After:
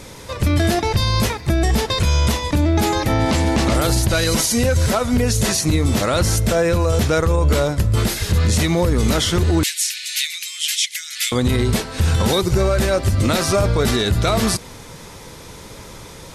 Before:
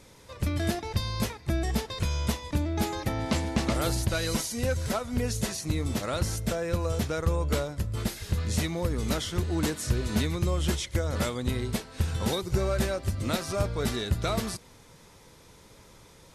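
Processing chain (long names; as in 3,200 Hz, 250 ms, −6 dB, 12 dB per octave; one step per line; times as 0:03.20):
0:01.07–0:01.79: surface crackle 28 per second → 78 per second −52 dBFS
0:09.63–0:11.32: Butterworth high-pass 2,100 Hz 36 dB per octave
boost into a limiter +23.5 dB
level −7.5 dB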